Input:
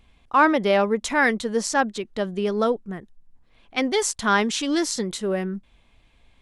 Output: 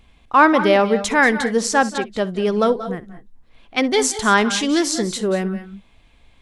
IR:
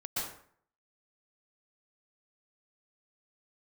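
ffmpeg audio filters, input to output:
-filter_complex "[0:a]asplit=2[s0][s1];[1:a]atrim=start_sample=2205,afade=t=out:st=0.21:d=0.01,atrim=end_sample=9702,adelay=63[s2];[s1][s2]afir=irnorm=-1:irlink=0,volume=0.211[s3];[s0][s3]amix=inputs=2:normalize=0,volume=1.68"

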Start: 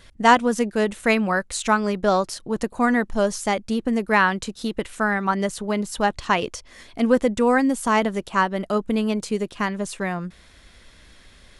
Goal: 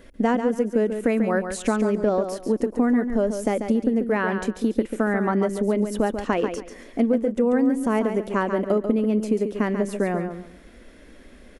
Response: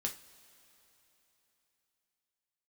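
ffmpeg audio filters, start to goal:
-af "equalizer=f=125:t=o:w=1:g=-12,equalizer=f=250:t=o:w=1:g=11,equalizer=f=500:t=o:w=1:g=7,equalizer=f=1000:t=o:w=1:g=-5,equalizer=f=4000:t=o:w=1:g=-10,equalizer=f=8000:t=o:w=1:g=-6,acompressor=threshold=0.1:ratio=6,aecho=1:1:140|280|420:0.398|0.0955|0.0229,volume=1.19"

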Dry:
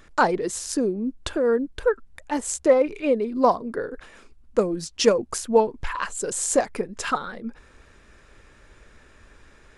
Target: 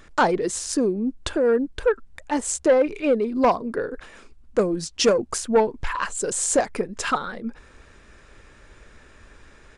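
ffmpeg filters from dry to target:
-af "asoftclip=type=tanh:threshold=0.237,aresample=22050,aresample=44100,volume=1.33"

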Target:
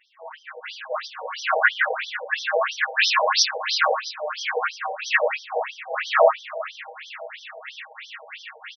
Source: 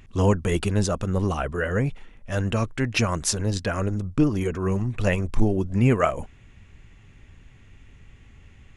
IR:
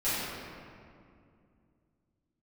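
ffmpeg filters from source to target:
-filter_complex "[0:a]areverse,acompressor=threshold=0.0251:ratio=16,areverse,aecho=1:1:487|974|1461|1948:0.158|0.0792|0.0396|0.0198,dynaudnorm=f=530:g=5:m=4.22,bass=f=250:g=-10,treble=f=4000:g=10,bandreject=f=77.18:t=h:w=4,bandreject=f=154.36:t=h:w=4,bandreject=f=231.54:t=h:w=4,bandreject=f=308.72:t=h:w=4,bandreject=f=385.9:t=h:w=4,bandreject=f=463.08:t=h:w=4,bandreject=f=540.26:t=h:w=4,aeval=exprs='0.355*(cos(1*acos(clip(val(0)/0.355,-1,1)))-cos(1*PI/2))+0.0447*(cos(6*acos(clip(val(0)/0.355,-1,1)))-cos(6*PI/2))':c=same,equalizer=f=1600:w=2.2:g=4.5,aecho=1:1:6.4:0.89[s0];[1:a]atrim=start_sample=2205,afade=t=out:st=0.23:d=0.01,atrim=end_sample=10584,asetrate=38808,aresample=44100[s1];[s0][s1]afir=irnorm=-1:irlink=0,afftfilt=real='re*between(b*sr/1024,640*pow(4400/640,0.5+0.5*sin(2*PI*3*pts/sr))/1.41,640*pow(4400/640,0.5+0.5*sin(2*PI*3*pts/sr))*1.41)':imag='im*between(b*sr/1024,640*pow(4400/640,0.5+0.5*sin(2*PI*3*pts/sr))/1.41,640*pow(4400/640,0.5+0.5*sin(2*PI*3*pts/sr))*1.41)':win_size=1024:overlap=0.75"

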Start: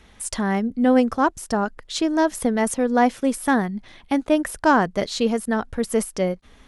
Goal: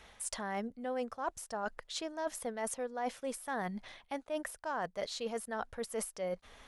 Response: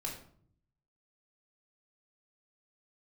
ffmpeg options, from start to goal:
-af "lowshelf=f=420:t=q:w=1.5:g=-7.5,areverse,acompressor=threshold=0.0224:ratio=6,areverse,volume=0.75"

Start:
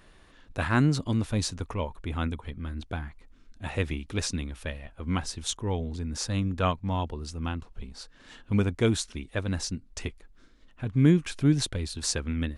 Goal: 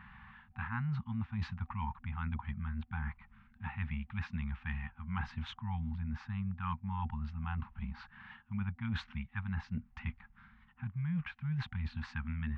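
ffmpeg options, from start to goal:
-af "highpass=63,afftfilt=real='re*(1-between(b*sr/4096,240,760))':imag='im*(1-between(b*sr/4096,240,760))':win_size=4096:overlap=0.75,lowpass=f=2300:w=0.5412,lowpass=f=2300:w=1.3066,areverse,acompressor=threshold=0.00891:ratio=8,areverse,volume=2.11"

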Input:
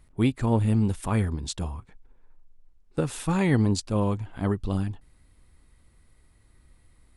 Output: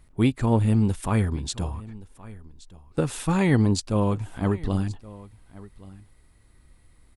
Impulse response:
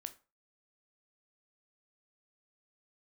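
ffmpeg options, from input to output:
-af "aecho=1:1:1123:0.1,volume=1.26"

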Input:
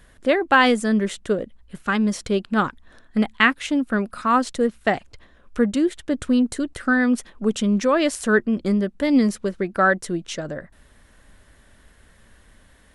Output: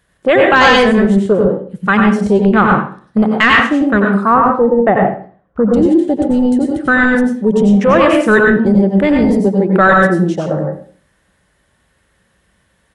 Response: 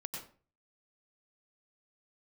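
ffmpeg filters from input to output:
-filter_complex "[0:a]highpass=66,afwtdn=0.0316,asettb=1/sr,asplit=3[s0][s1][s2];[s0]atrim=end=4.244[s3];[s1]atrim=start=4.24:end=5.72,asetpts=PTS-STARTPTS,afade=t=in:d=0.004:c=qsin,afade=t=out:st=1.476:d=0.004:c=qsin,lowpass=1200[s4];[s2]atrim=start=5.716[s5];[s3][s4]acrossfade=d=0.004:c1=hsin:c2=qsin[s6];[s6][s5]acrossfade=d=0.004:c1=qsin:c2=hsin,aecho=1:1:81|162|243:0.133|0.0413|0.0128[s7];[1:a]atrim=start_sample=2205[s8];[s7][s8]afir=irnorm=-1:irlink=0,apsyclip=7.5,equalizer=f=260:w=3.8:g=-6,volume=0.708"

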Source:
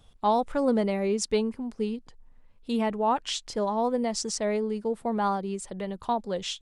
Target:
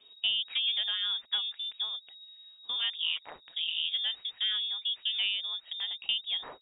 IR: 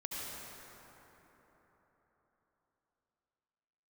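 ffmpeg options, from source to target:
-filter_complex "[0:a]asplit=3[s0][s1][s2];[s0]afade=t=out:st=2.9:d=0.02[s3];[s1]tremolo=f=160:d=0.947,afade=t=in:st=2.9:d=0.02,afade=t=out:st=3.93:d=0.02[s4];[s2]afade=t=in:st=3.93:d=0.02[s5];[s3][s4][s5]amix=inputs=3:normalize=0,acrossover=split=190|540|2500[s6][s7][s8][s9];[s6]acompressor=threshold=0.00398:ratio=4[s10];[s7]acompressor=threshold=0.0141:ratio=4[s11];[s8]acompressor=threshold=0.0355:ratio=4[s12];[s9]acompressor=threshold=0.00316:ratio=4[s13];[s10][s11][s12][s13]amix=inputs=4:normalize=0,lowpass=f=3200:t=q:w=0.5098,lowpass=f=3200:t=q:w=0.6013,lowpass=f=3200:t=q:w=0.9,lowpass=f=3200:t=q:w=2.563,afreqshift=-3800"

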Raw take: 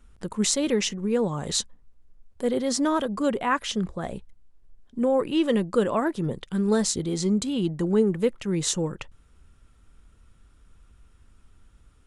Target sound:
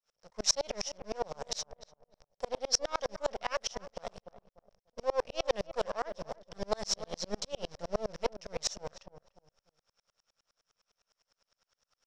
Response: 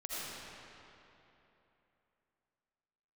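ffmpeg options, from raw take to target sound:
-filter_complex "[0:a]adynamicequalizer=threshold=0.0141:dfrequency=200:dqfactor=7.2:tfrequency=200:tqfactor=7.2:attack=5:release=100:ratio=0.375:range=2.5:mode=boostabove:tftype=bell,acrossover=split=130[s0][s1];[s0]acrusher=bits=6:mix=0:aa=0.000001[s2];[s2][s1]amix=inputs=2:normalize=0,aeval=exprs='max(val(0),0)':c=same,lowpass=f=5500:t=q:w=8.8,lowshelf=f=420:t=q:w=3:g=-9,asplit=2[s3][s4];[s4]adelay=294,lowpass=f=990:p=1,volume=0.316,asplit=2[s5][s6];[s6]adelay=294,lowpass=f=990:p=1,volume=0.31,asplit=2[s7][s8];[s8]adelay=294,lowpass=f=990:p=1,volume=0.31[s9];[s5][s7][s9]amix=inputs=3:normalize=0[s10];[s3][s10]amix=inputs=2:normalize=0,aeval=exprs='val(0)*pow(10,-37*if(lt(mod(-9.8*n/s,1),2*abs(-9.8)/1000),1-mod(-9.8*n/s,1)/(2*abs(-9.8)/1000),(mod(-9.8*n/s,1)-2*abs(-9.8)/1000)/(1-2*abs(-9.8)/1000))/20)':c=same"

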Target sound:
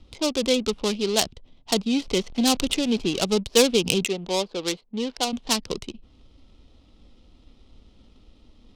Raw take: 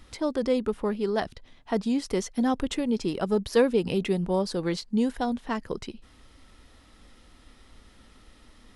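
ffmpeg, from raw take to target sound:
-filter_complex "[0:a]asettb=1/sr,asplit=3[s0][s1][s2];[s0]atrim=end=1.934[s3];[s1]atrim=start=1.93:end=3.22,asetpts=PTS-STARTPTS,afade=t=in:d=0.004:c=qsin,afade=t=out:st=1.286:d=0.004:c=qsin,aeval=exprs='val(0)+0.5*0.0133*sgn(val(0))':c=same[s4];[s2]atrim=start=3.216[s5];[s3][s4]acrossfade=d=0.004:c1=hsin:c2=qsin[s6];[s6][s5]acrossfade=d=0.004:c1=qsin:c2=hsin,acrossover=split=300|2900[s7][s8][s9];[s9]acompressor=threshold=0.00126:ratio=5[s10];[s7][s8][s10]amix=inputs=3:normalize=0,asettb=1/sr,asplit=3[s11][s12][s13];[s11]atrim=end=4.054[s14];[s12]atrim=start=4.05:end=5.33,asetpts=PTS-STARTPTS,afade=t=in:d=0.004:c=qsin,afade=t=out:st=1.276:d=0.004:c=qsin,bass=f=250:g=-13,treble=f=4000:g=-15[s15];[s13]atrim=start=5.326[s16];[s14][s15]acrossfade=d=0.004:c1=hsin:c2=qsin[s17];[s17][s16]acrossfade=d=0.004:c1=qsin:c2=hsin,adynamicsmooth=sensitivity=6:basefreq=620,aexciter=amount=15.1:drive=5.9:freq=2700,volume=1.26"

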